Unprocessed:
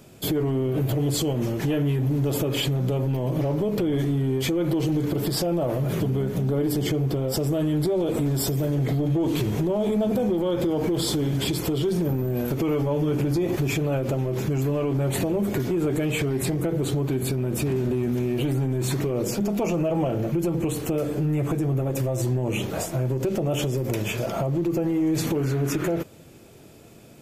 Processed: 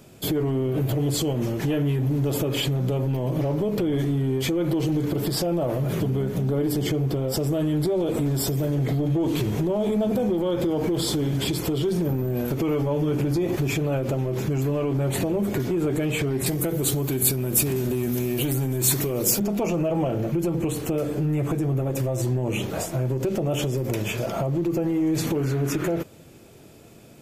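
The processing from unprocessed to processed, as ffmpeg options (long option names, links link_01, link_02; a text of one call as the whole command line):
ffmpeg -i in.wav -filter_complex "[0:a]asettb=1/sr,asplit=3[link_01][link_02][link_03];[link_01]atrim=end=16.464[link_04];[link_02]atrim=start=16.46:end=19.4,asetpts=PTS-STARTPTS,afade=type=in:duration=0.004:curve=qsin,afade=type=out:start_time=2.936:duration=0.004:curve=qsin,aemphasis=mode=production:type=75fm[link_05];[link_03]atrim=start=19.396[link_06];[link_04][link_05]acrossfade=duration=0.004:curve1=hsin:curve2=qsin[link_07];[link_07][link_06]acrossfade=duration=0.004:curve1=qsin:curve2=hsin" out.wav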